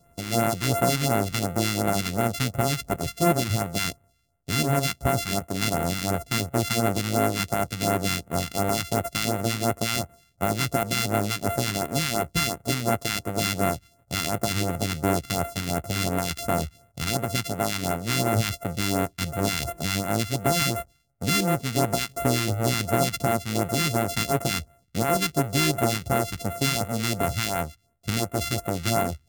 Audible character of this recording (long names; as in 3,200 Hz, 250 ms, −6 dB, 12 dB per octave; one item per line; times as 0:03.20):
a buzz of ramps at a fixed pitch in blocks of 64 samples
phaser sweep stages 2, 2.8 Hz, lowest notch 570–4,800 Hz